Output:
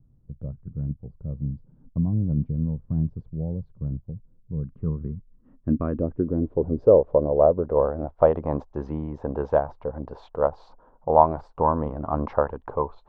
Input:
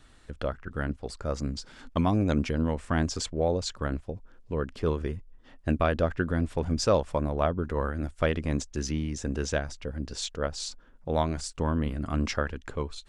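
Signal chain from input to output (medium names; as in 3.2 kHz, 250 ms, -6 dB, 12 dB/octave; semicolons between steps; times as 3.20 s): 4.63–6.00 s: high-order bell 1.8 kHz +13.5 dB; low-pass sweep 160 Hz -> 860 Hz, 4.73–8.43 s; ten-band graphic EQ 125 Hz +5 dB, 500 Hz +8 dB, 1 kHz +11 dB, 4 kHz +8 dB; trim -4 dB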